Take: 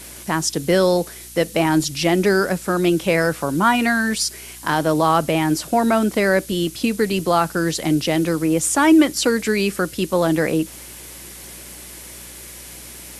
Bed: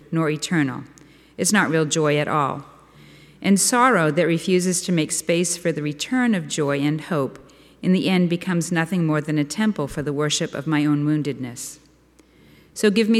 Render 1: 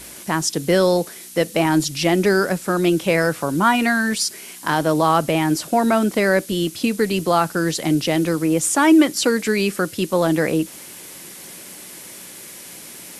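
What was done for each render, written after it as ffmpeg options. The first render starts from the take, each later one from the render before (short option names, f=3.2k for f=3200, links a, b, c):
-af "bandreject=f=60:t=h:w=4,bandreject=f=120:t=h:w=4"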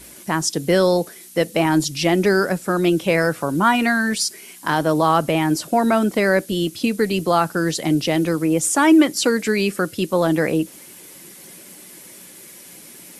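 -af "afftdn=nr=6:nf=-39"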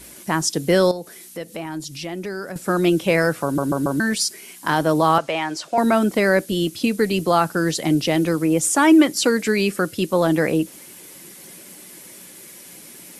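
-filter_complex "[0:a]asettb=1/sr,asplit=3[a][b][c];[a]atrim=end=0.914[d];[b]atrim=start=0.91:end=2.56,asetpts=PTS-STARTPTS,afade=t=in:d=0.004:c=qsin,afade=t=out:st=1.646:d=0.004:c=qsin,acompressor=threshold=-36dB:ratio=2:attack=3.2:release=140:knee=1:detection=peak[e];[c]atrim=start=2.556[f];[d][e]acrossfade=d=0.004:c1=hsin:c2=qsin[g];[g][f]acrossfade=d=0.004:c1=qsin:c2=hsin,asettb=1/sr,asplit=3[h][i][j];[h]atrim=end=5.184[k];[i]atrim=start=5.18:end=5.78,asetpts=PTS-STARTPTS,afade=t=in:d=0.004:c=qsin,afade=t=out:st=0.596:d=0.004:c=qsin,acrossover=split=490 7400:gain=0.178 1 0.0891[l][m][n];[l][m][n]amix=inputs=3:normalize=0[o];[j]atrim=start=5.776[p];[k][o]acrossfade=d=0.004:c1=hsin:c2=qsin[q];[q][p]acrossfade=d=0.004:c1=qsin:c2=hsin,asplit=5[r][s][t][u][v];[r]atrim=end=3.582[w];[s]atrim=start=3.438:end=3.582[x];[t]atrim=start=3.438:end=3.582[y];[u]atrim=start=3.438:end=3.582[z];[v]atrim=start=3.998[aa];[w][x]acrossfade=d=0.004:c1=hsin:c2=hsin[ab];[ab][y]acrossfade=d=0.004:c1=hsin:c2=hsin[ac];[ac][z]acrossfade=d=0.004:c1=hsin:c2=hsin[ad];[ad][aa]acrossfade=d=0.004:c1=hsin:c2=hsin"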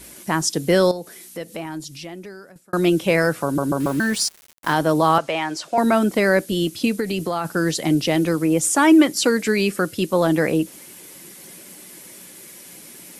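-filter_complex "[0:a]asettb=1/sr,asplit=3[a][b][c];[a]atrim=end=3.804[d];[b]atrim=start=3.8:end=4.73,asetpts=PTS-STARTPTS,afade=t=in:d=0.004:c=qsin,afade=t=out:st=0.926:d=0.004:c=qsin,aeval=exprs='val(0)*gte(abs(val(0)),0.0251)':c=same[e];[c]atrim=start=4.726[f];[d][e]acrossfade=d=0.004:c1=hsin:c2=qsin[g];[g][f]acrossfade=d=0.004:c1=qsin:c2=hsin,asplit=3[h][i][j];[h]afade=t=out:st=6.99:d=0.02[k];[i]acompressor=threshold=-19dB:ratio=5:attack=3.2:release=140:knee=1:detection=peak,afade=t=in:st=6.99:d=0.02,afade=t=out:st=7.44:d=0.02[l];[j]afade=t=in:st=7.44:d=0.02[m];[k][l][m]amix=inputs=3:normalize=0,asplit=2[n][o];[n]atrim=end=2.73,asetpts=PTS-STARTPTS,afade=t=out:st=1.59:d=1.14[p];[o]atrim=start=2.73,asetpts=PTS-STARTPTS,afade=t=in:d=0.004:c=hsin[q];[p][q]concat=n=2:v=0:a=1"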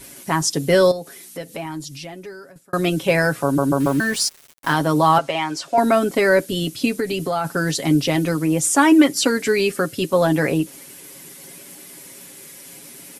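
-af "aecho=1:1:7.3:0.55"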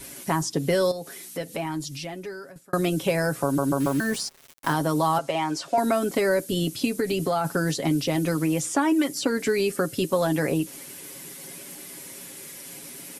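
-filter_complex "[0:a]acrossover=split=1200|5200[a][b][c];[a]acompressor=threshold=-21dB:ratio=4[d];[b]acompressor=threshold=-35dB:ratio=4[e];[c]acompressor=threshold=-36dB:ratio=4[f];[d][e][f]amix=inputs=3:normalize=0"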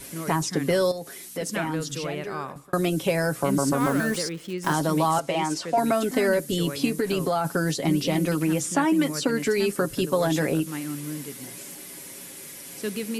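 -filter_complex "[1:a]volume=-13.5dB[a];[0:a][a]amix=inputs=2:normalize=0"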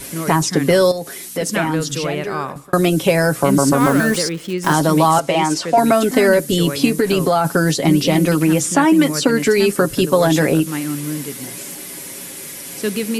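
-af "volume=9dB,alimiter=limit=-1dB:level=0:latency=1"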